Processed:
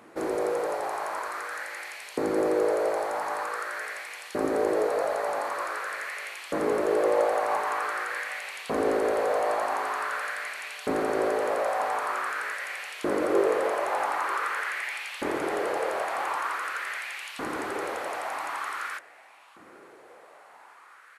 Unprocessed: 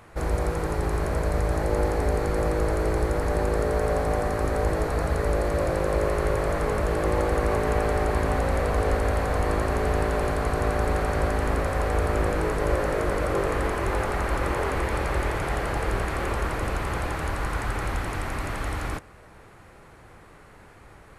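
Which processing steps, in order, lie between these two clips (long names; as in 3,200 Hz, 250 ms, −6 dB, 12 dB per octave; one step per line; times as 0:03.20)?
auto-filter high-pass saw up 0.46 Hz 250–3,100 Hz
slap from a distant wall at 160 metres, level −21 dB
level −2.5 dB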